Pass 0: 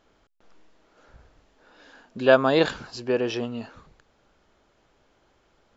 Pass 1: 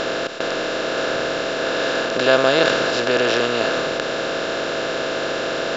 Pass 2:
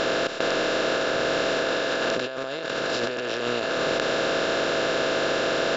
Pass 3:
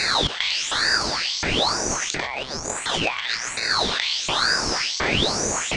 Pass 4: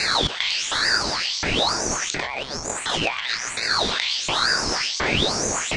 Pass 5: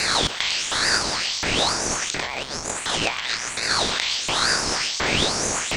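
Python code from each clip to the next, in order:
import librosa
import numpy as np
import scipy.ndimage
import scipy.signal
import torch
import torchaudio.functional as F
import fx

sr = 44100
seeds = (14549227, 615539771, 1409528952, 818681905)

y1 = fx.bin_compress(x, sr, power=0.2)
y1 = fx.high_shelf(y1, sr, hz=2100.0, db=9.0)
y1 = y1 * 10.0 ** (-3.5 / 20.0)
y2 = fx.over_compress(y1, sr, threshold_db=-23.0, ratio=-1.0)
y2 = y2 * 10.0 ** (-2.5 / 20.0)
y3 = fx.filter_lfo_highpass(y2, sr, shape='saw_up', hz=1.4, low_hz=910.0, high_hz=5600.0, q=5.1)
y3 = fx.ring_lfo(y3, sr, carrier_hz=1900.0, swing_pct=70, hz=1.1)
y3 = y3 * 10.0 ** (3.0 / 20.0)
y4 = fx.vibrato(y3, sr, rate_hz=8.3, depth_cents=67.0)
y5 = fx.spec_flatten(y4, sr, power=0.63)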